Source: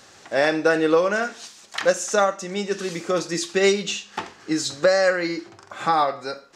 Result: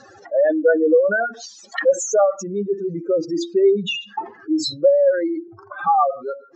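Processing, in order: spectral contrast enhancement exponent 3.6; trim +4 dB

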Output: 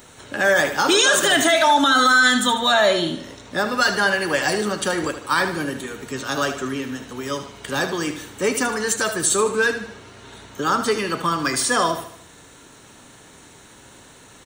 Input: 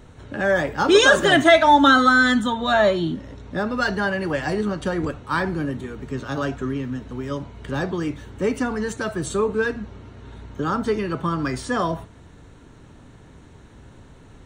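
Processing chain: RIAA curve recording; peak limiter -12.5 dBFS, peak gain reduction 11 dB; feedback delay 76 ms, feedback 45%, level -10.5 dB; trim +4.5 dB

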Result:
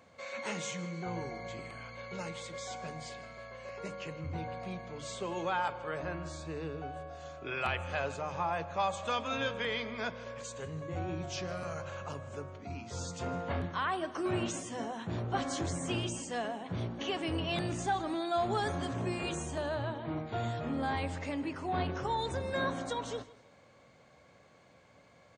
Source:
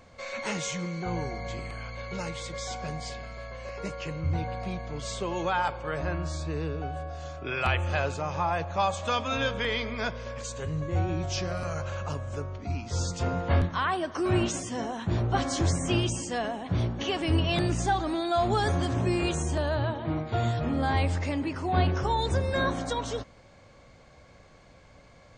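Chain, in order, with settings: high-pass 120 Hz 12 dB/octave; peaking EQ 5.2 kHz -4 dB 0.49 oct; hum notches 50/100/150/200/250/300/350 Hz; on a send: feedback delay 158 ms, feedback 32%, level -19 dB; on the sum: transformer saturation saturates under 350 Hz; trim -5 dB

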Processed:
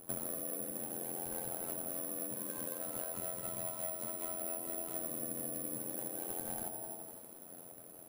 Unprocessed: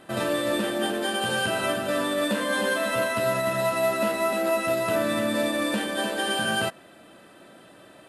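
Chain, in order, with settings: median filter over 25 samples; feedback echo behind a band-pass 82 ms, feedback 55%, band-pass 460 Hz, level -6 dB; AM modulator 86 Hz, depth 95%; careless resampling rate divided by 4×, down none, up zero stuff; on a send at -7 dB: spectral gate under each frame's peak -15 dB strong + reverberation RT60 0.70 s, pre-delay 3 ms; on the sum: compression 16:1, threshold -30 dBFS, peak gain reduction 17 dB; bit-crushed delay 261 ms, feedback 55%, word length 8-bit, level -10.5 dB; trim -4 dB

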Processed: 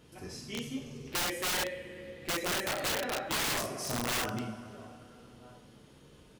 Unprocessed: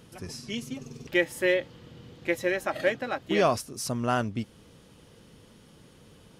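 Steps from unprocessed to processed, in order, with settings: treble shelf 5.1 kHz -2.5 dB; echo from a far wall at 230 m, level -26 dB; two-slope reverb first 0.57 s, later 3.1 s, from -16 dB, DRR -2.5 dB; integer overflow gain 19.5 dB; trim -7 dB

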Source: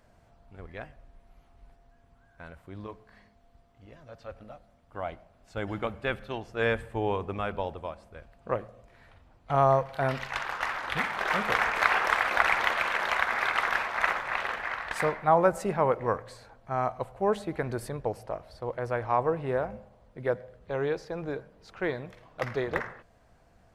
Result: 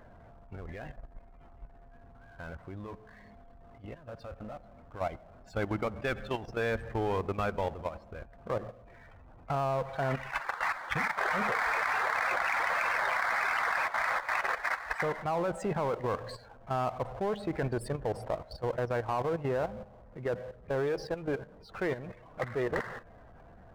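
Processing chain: loudest bins only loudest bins 64; level held to a coarse grid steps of 17 dB; power-law waveshaper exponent 0.7

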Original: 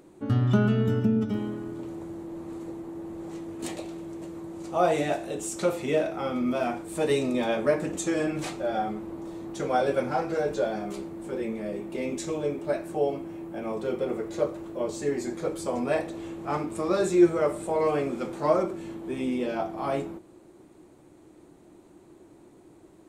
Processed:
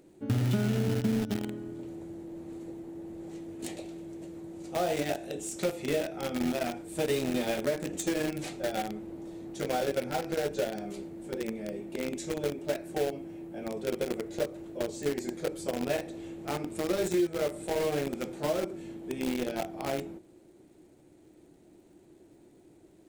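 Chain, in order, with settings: crackle 220 per s -57 dBFS; in parallel at -4.5 dB: bit crusher 4-bit; on the sum: compression 6:1, threshold -20 dBFS, peak gain reduction 11 dB; peaking EQ 1.1 kHz -9.5 dB 0.66 oct; trim -4 dB

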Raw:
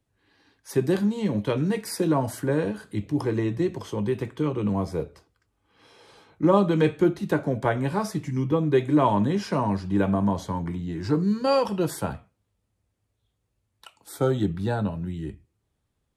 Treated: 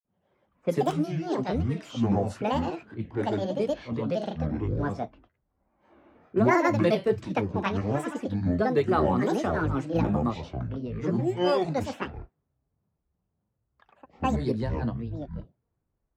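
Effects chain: granulator 232 ms, grains 12 per s, pitch spread up and down by 12 st; level-controlled noise filter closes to 1.2 kHz, open at -21 dBFS

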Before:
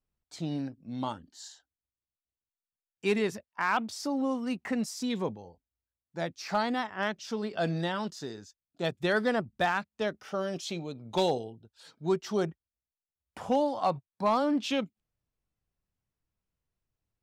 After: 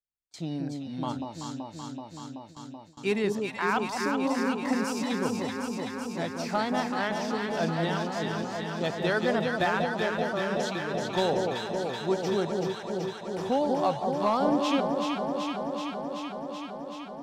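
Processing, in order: echo whose repeats swap between lows and highs 190 ms, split 900 Hz, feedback 89%, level -3 dB; gate with hold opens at -35 dBFS

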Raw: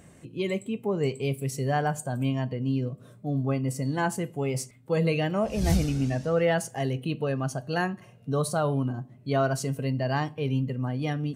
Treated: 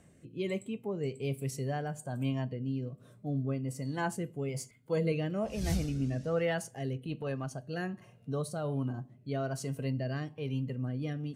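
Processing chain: 4.48–5.12 s: rippled EQ curve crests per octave 1.8, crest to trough 7 dB; 6.93–7.51 s: transient shaper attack -7 dB, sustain -3 dB; rotary cabinet horn 1.2 Hz; trim -5 dB

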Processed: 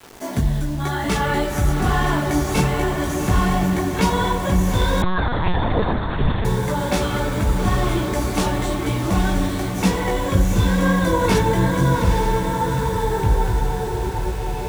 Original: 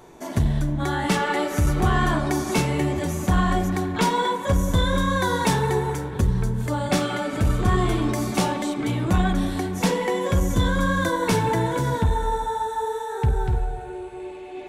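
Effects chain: in parallel at -1.5 dB: compression, threshold -28 dBFS, peak gain reduction 12.5 dB; on the sum: chorus voices 4, 1 Hz, delay 18 ms, depth 3 ms; bit crusher 7-bit; echo that smears into a reverb 843 ms, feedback 57%, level -5.5 dB; 5.02–6.45 s: LPC vocoder at 8 kHz pitch kept; trim +1.5 dB

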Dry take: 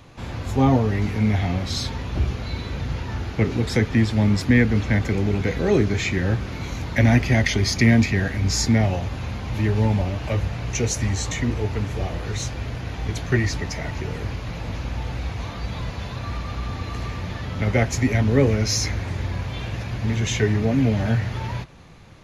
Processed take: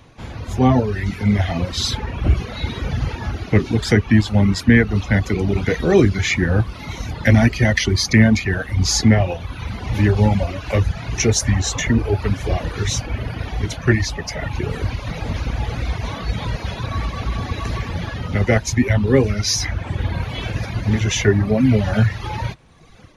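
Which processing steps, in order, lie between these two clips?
reverb removal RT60 1.2 s; level rider gain up to 8 dB; speed mistake 25 fps video run at 24 fps

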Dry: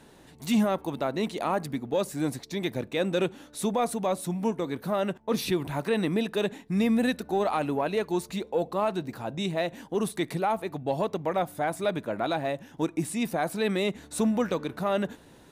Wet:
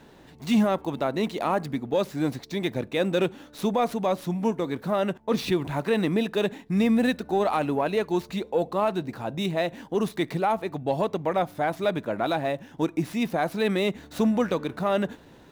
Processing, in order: median filter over 5 samples; trim +2.5 dB

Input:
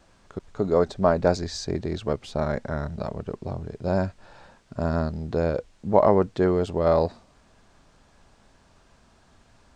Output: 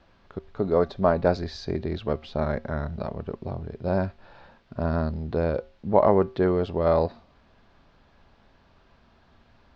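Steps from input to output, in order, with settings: low-pass 4.4 kHz 24 dB/octave; feedback comb 77 Hz, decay 0.38 s, harmonics odd, mix 40%; trim +3 dB

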